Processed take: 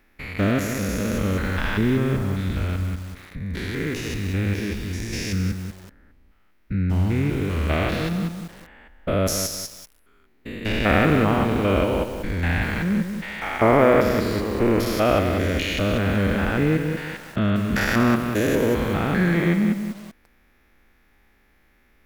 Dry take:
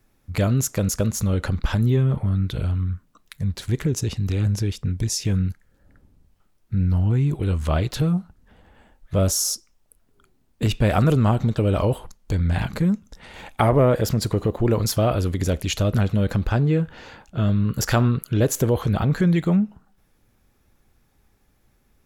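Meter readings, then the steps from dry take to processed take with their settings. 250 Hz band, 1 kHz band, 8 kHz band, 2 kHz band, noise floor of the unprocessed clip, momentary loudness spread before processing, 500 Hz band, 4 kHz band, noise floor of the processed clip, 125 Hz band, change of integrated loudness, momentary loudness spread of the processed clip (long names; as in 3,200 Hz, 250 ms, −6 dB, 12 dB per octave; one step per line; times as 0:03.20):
+1.5 dB, +3.5 dB, −5.5 dB, +8.5 dB, −64 dBFS, 9 LU, +2.5 dB, +0.5 dB, −59 dBFS, −4.5 dB, −0.5 dB, 11 LU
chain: spectrum averaged block by block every 200 ms
octave-band graphic EQ 125/250/2,000/8,000 Hz −11/+3/+11/−9 dB
feedback echo at a low word length 189 ms, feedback 35%, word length 7 bits, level −7 dB
level +4 dB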